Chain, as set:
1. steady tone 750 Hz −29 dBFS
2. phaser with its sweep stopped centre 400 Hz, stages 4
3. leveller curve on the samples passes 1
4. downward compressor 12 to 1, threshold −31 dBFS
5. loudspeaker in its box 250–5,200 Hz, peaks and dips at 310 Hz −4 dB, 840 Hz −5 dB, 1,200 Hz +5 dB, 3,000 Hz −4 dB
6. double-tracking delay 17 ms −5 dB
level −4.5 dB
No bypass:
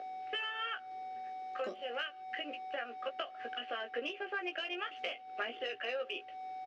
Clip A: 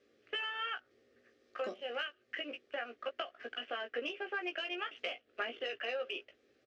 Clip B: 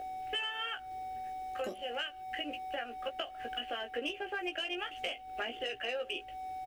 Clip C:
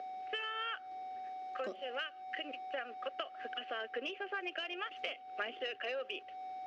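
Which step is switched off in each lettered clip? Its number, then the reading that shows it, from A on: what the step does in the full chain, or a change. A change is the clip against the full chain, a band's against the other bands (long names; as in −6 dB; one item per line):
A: 1, 1 kHz band −5.0 dB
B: 5, 2 kHz band −2.5 dB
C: 6, change in integrated loudness −1.0 LU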